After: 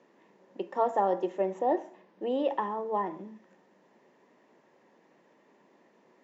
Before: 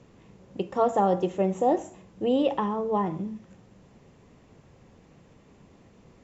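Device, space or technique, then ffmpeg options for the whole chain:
television speaker: -filter_complex "[0:a]asettb=1/sr,asplit=3[s0][s1][s2];[s0]atrim=end=1.594[s3];[s1]atrim=start=1.59:end=2.22,asetpts=PTS-STARTPTS,afade=t=in:d=0.004:c=qsin,afade=t=out:st=0.626:d=0.004:c=qsin,lowpass=f=5400:w=0.5412,lowpass=f=5400:w=1.3066[s4];[s2]atrim=start=2.216[s5];[s3][s4]acrossfade=d=0.004:c1=hsin:c2=qsin[s6];[s6][s5]acrossfade=d=0.004:c1=qsin:c2=hsin,highpass=f=220:w=0.5412,highpass=f=220:w=1.3066,equalizer=f=360:t=q:w=4:g=5,equalizer=f=600:t=q:w=4:g=6,equalizer=f=930:t=q:w=4:g=9,equalizer=f=1800:t=q:w=4:g=10,lowpass=f=6800:w=0.5412,lowpass=f=6800:w=1.3066,volume=0.376"

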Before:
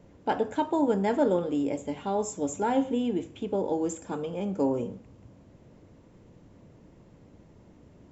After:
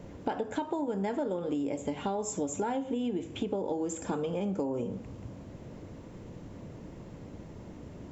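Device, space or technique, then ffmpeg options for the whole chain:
serial compression, leveller first: -af "acompressor=threshold=0.0398:ratio=2.5,acompressor=threshold=0.0126:ratio=6,volume=2.66"

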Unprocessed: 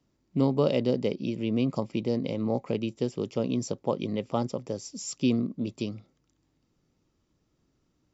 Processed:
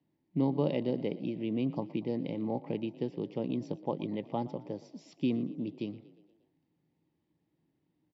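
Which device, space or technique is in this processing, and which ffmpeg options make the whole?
frequency-shifting delay pedal into a guitar cabinet: -filter_complex "[0:a]asplit=6[s0][s1][s2][s3][s4][s5];[s1]adelay=118,afreqshift=33,volume=0.112[s6];[s2]adelay=236,afreqshift=66,volume=0.0617[s7];[s3]adelay=354,afreqshift=99,volume=0.0339[s8];[s4]adelay=472,afreqshift=132,volume=0.0186[s9];[s5]adelay=590,afreqshift=165,volume=0.0102[s10];[s0][s6][s7][s8][s9][s10]amix=inputs=6:normalize=0,highpass=95,equalizer=f=160:t=q:w=4:g=8,equalizer=f=310:t=q:w=4:g=8,equalizer=f=850:t=q:w=4:g=7,equalizer=f=1300:t=q:w=4:g=-10,equalizer=f=1900:t=q:w=4:g=5,lowpass=f=4000:w=0.5412,lowpass=f=4000:w=1.3066,volume=0.398"

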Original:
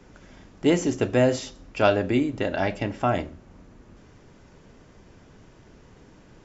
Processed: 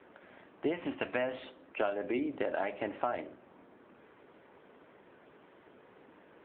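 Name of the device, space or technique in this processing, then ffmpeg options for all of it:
voicemail: -filter_complex "[0:a]asplit=3[s0][s1][s2];[s0]afade=t=out:st=0.72:d=0.02[s3];[s1]equalizer=f=400:t=o:w=0.67:g=-11,equalizer=f=1000:t=o:w=0.67:g=3,equalizer=f=2500:t=o:w=0.67:g=6,equalizer=f=6300:t=o:w=0.67:g=3,afade=t=in:st=0.72:d=0.02,afade=t=out:st=1.38:d=0.02[s4];[s2]afade=t=in:st=1.38:d=0.02[s5];[s3][s4][s5]amix=inputs=3:normalize=0,highpass=380,lowpass=2700,acompressor=threshold=0.0398:ratio=10" -ar 8000 -c:a libopencore_amrnb -b:a 7950

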